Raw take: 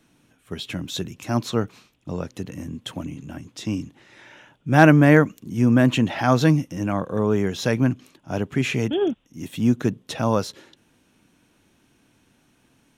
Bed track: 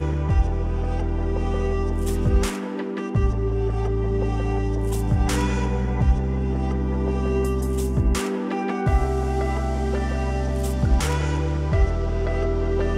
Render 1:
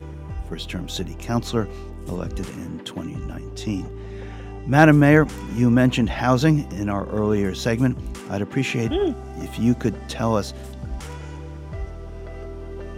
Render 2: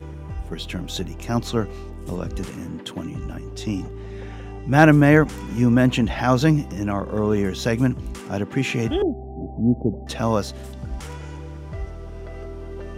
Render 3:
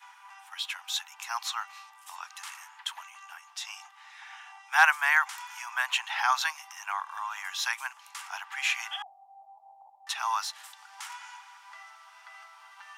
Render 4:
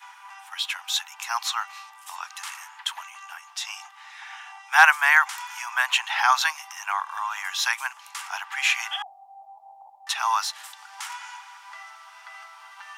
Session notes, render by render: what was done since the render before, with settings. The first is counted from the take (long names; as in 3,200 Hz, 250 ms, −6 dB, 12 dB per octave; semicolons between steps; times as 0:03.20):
mix in bed track −12 dB
0:09.02–0:10.07: Butterworth low-pass 840 Hz 72 dB per octave
Butterworth high-pass 830 Hz 72 dB per octave
level +6 dB; brickwall limiter −1 dBFS, peak gain reduction 1 dB